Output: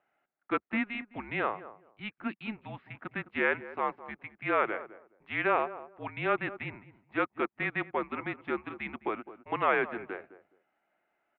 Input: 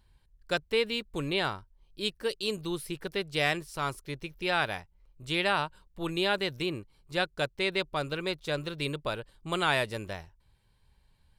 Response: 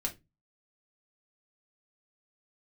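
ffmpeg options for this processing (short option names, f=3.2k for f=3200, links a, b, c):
-filter_complex "[0:a]highpass=f=530:t=q:w=0.5412,highpass=f=530:t=q:w=1.307,lowpass=f=2.5k:t=q:w=0.5176,lowpass=f=2.5k:t=q:w=0.7071,lowpass=f=2.5k:t=q:w=1.932,afreqshift=-220,asplit=2[a][b];[b]adelay=209,lowpass=f=920:p=1,volume=-13.5dB,asplit=2[c][d];[d]adelay=209,lowpass=f=920:p=1,volume=0.21[e];[a][c][e]amix=inputs=3:normalize=0,volume=2dB"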